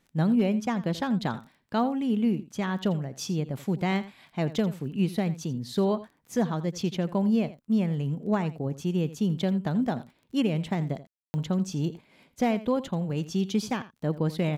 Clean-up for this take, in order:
clipped peaks rebuilt −15.5 dBFS
click removal
ambience match 0:11.07–0:11.34
echo removal 84 ms −16 dB

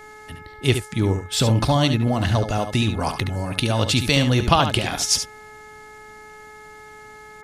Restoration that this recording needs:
hum removal 426.9 Hz, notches 5
echo removal 71 ms −8.5 dB

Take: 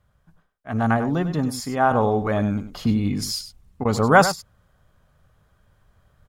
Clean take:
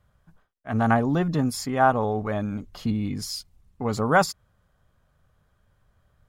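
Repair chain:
repair the gap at 0:03.84, 11 ms
echo removal 97 ms −11.5 dB
level 0 dB, from 0:01.91 −5 dB

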